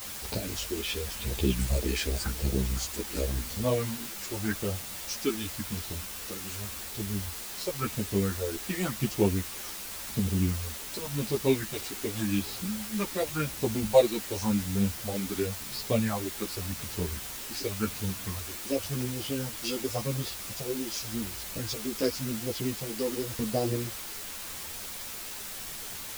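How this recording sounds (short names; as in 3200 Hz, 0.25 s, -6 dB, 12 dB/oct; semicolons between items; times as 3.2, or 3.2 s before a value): phasing stages 4, 0.9 Hz, lowest notch 110–1800 Hz; a quantiser's noise floor 6-bit, dither triangular; a shimmering, thickened sound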